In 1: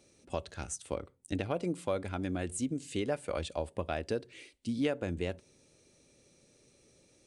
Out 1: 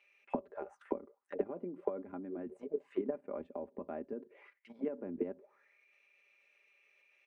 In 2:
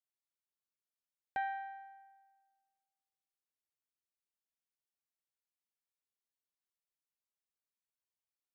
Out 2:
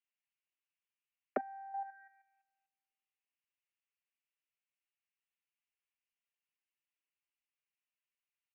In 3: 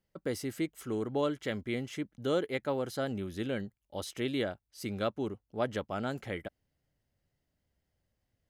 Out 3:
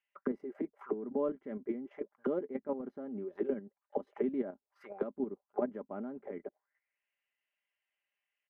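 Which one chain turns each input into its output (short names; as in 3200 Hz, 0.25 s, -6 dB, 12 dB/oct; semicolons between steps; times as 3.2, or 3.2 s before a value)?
graphic EQ 125/250/500/1000/2000/4000/8000 Hz -10/-3/+6/+10/+9/-8/-9 dB; auto-wah 260–2800 Hz, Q 5.7, down, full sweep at -28.5 dBFS; level quantiser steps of 10 dB; comb 5 ms, depth 47%; gain +9 dB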